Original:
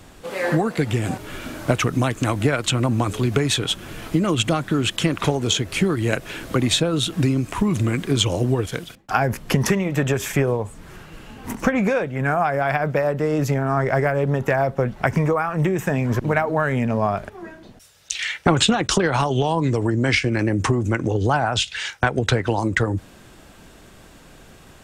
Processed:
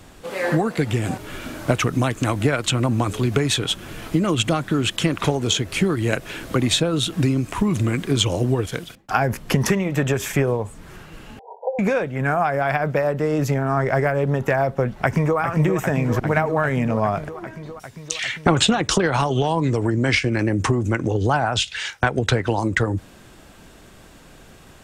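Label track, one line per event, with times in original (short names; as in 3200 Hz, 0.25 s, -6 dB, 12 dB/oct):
11.390000	11.790000	brick-wall FIR band-pass 410–1000 Hz
14.940000	15.390000	echo throw 0.4 s, feedback 80%, level -7 dB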